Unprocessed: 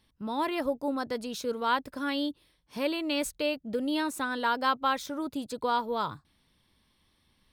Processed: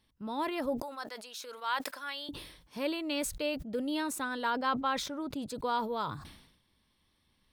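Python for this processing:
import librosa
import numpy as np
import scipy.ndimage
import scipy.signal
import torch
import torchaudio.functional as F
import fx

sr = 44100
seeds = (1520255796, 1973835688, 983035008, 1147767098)

y = fx.highpass(x, sr, hz=920.0, slope=12, at=(0.82, 2.29))
y = fx.high_shelf(y, sr, hz=6900.0, db=-11.0, at=(4.5, 5.49))
y = fx.sustainer(y, sr, db_per_s=68.0)
y = y * librosa.db_to_amplitude(-4.0)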